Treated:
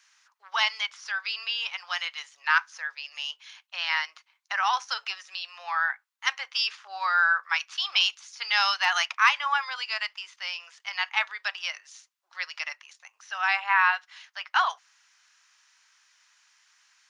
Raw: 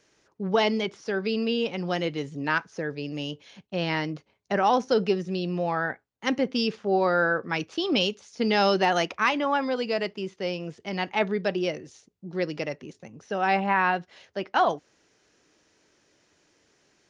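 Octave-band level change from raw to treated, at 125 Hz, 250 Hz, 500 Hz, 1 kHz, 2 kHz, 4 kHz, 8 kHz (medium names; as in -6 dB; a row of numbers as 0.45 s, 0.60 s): under -40 dB, under -40 dB, -24.0 dB, -1.0 dB, +4.5 dB, +4.5 dB, no reading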